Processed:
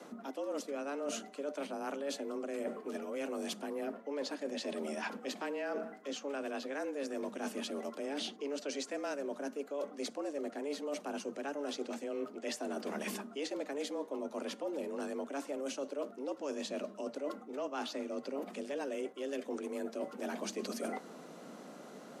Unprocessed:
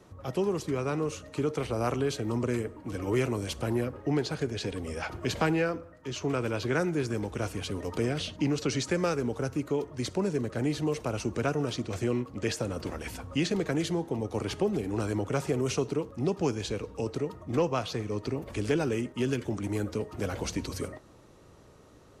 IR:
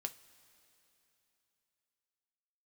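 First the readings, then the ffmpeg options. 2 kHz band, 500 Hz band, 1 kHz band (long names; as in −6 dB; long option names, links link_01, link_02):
−8.0 dB, −7.0 dB, −6.5 dB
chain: -af "areverse,acompressor=threshold=-40dB:ratio=16,areverse,afreqshift=140,volume=5dB"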